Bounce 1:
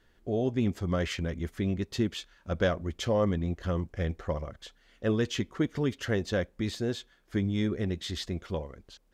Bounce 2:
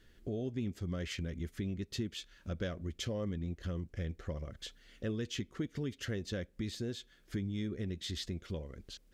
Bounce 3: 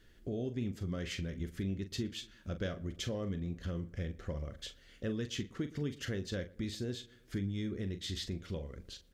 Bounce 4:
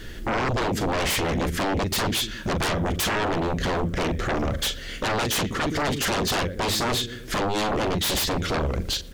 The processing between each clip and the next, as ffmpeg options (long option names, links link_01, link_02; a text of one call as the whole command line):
ffmpeg -i in.wav -af "equalizer=frequency=890:width_type=o:width=1.3:gain=-11,acompressor=threshold=-43dB:ratio=2.5,volume=3.5dB" out.wav
ffmpeg -i in.wav -filter_complex "[0:a]asplit=2[link_01][link_02];[link_02]adelay=41,volume=-10.5dB[link_03];[link_01][link_03]amix=inputs=2:normalize=0,asplit=2[link_04][link_05];[link_05]adelay=117,lowpass=frequency=1800:poles=1,volume=-21dB,asplit=2[link_06][link_07];[link_07]adelay=117,lowpass=frequency=1800:poles=1,volume=0.53,asplit=2[link_08][link_09];[link_09]adelay=117,lowpass=frequency=1800:poles=1,volume=0.53,asplit=2[link_10][link_11];[link_11]adelay=117,lowpass=frequency=1800:poles=1,volume=0.53[link_12];[link_04][link_06][link_08][link_10][link_12]amix=inputs=5:normalize=0" out.wav
ffmpeg -i in.wav -af "aeval=exprs='0.0562*sin(PI/2*7.08*val(0)/0.0562)':channel_layout=same,volume=4dB" out.wav